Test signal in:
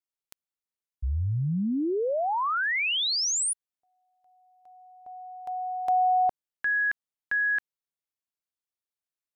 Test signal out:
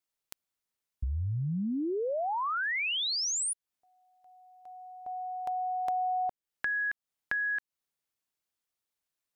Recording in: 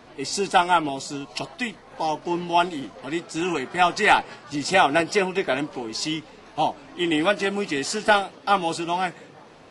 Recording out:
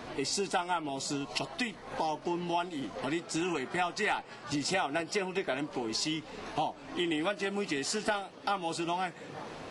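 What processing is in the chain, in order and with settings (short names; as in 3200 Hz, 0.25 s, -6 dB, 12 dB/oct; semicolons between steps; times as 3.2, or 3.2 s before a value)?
compressor 4:1, threshold -37 dBFS; gain +5 dB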